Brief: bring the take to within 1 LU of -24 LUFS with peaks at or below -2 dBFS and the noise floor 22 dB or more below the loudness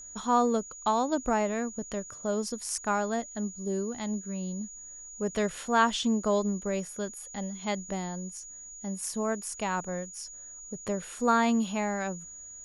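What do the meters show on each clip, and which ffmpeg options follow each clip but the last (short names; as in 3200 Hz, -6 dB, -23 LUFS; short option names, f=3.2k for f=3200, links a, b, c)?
steady tone 6800 Hz; tone level -43 dBFS; loudness -30.5 LUFS; peak -11.5 dBFS; loudness target -24.0 LUFS
-> -af "bandreject=f=6.8k:w=30"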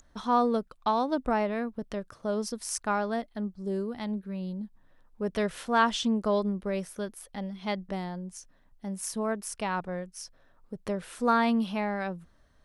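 steady tone none; loudness -30.5 LUFS; peak -12.0 dBFS; loudness target -24.0 LUFS
-> -af "volume=6.5dB"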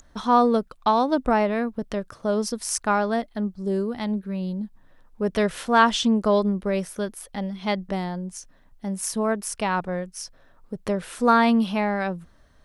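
loudness -24.0 LUFS; peak -5.5 dBFS; noise floor -56 dBFS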